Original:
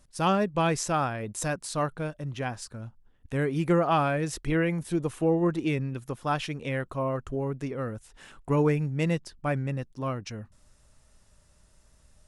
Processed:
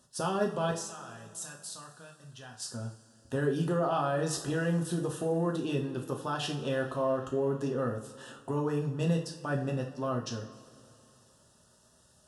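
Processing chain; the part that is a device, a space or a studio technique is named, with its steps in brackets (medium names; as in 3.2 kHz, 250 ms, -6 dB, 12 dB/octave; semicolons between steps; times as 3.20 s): PA system with an anti-feedback notch (high-pass 150 Hz 12 dB/octave; Butterworth band-stop 2.2 kHz, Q 2.3; peak limiter -23 dBFS, peak gain reduction 11 dB); 0.71–2.60 s: amplifier tone stack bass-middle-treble 5-5-5; two-slope reverb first 0.41 s, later 2.9 s, from -19 dB, DRR 0.5 dB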